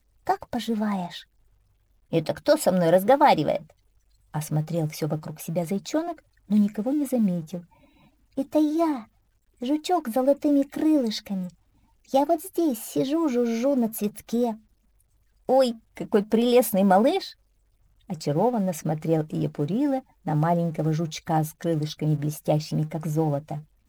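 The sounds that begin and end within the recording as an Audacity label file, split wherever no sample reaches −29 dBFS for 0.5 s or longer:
2.130000	3.570000	sound
4.350000	7.580000	sound
8.380000	8.990000	sound
9.620000	11.460000	sound
12.140000	14.530000	sound
15.490000	17.280000	sound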